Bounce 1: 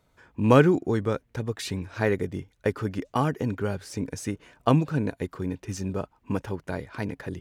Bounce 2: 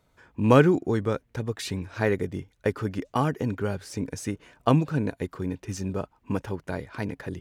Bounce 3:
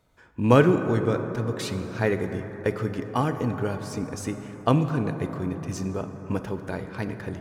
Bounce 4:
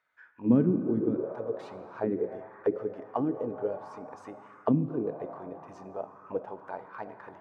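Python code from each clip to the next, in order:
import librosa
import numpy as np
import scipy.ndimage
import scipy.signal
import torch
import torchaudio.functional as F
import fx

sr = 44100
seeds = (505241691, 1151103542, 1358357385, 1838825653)

y1 = x
y2 = fx.rev_plate(y1, sr, seeds[0], rt60_s=4.9, hf_ratio=0.3, predelay_ms=0, drr_db=7.5)
y3 = fx.auto_wah(y2, sr, base_hz=230.0, top_hz=1700.0, q=3.7, full_db=-18.0, direction='down')
y3 = y3 * 10.0 ** (3.0 / 20.0)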